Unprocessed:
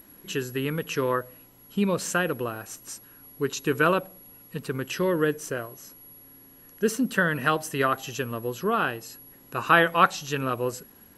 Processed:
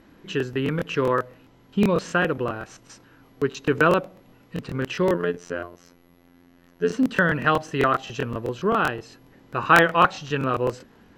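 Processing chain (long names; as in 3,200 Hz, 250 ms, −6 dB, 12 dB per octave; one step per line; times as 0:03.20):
0:05.14–0:06.92: phases set to zero 87.1 Hz
high-frequency loss of the air 170 metres
regular buffer underruns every 0.13 s, samples 1,024, repeat, from 0:00.38
level +4 dB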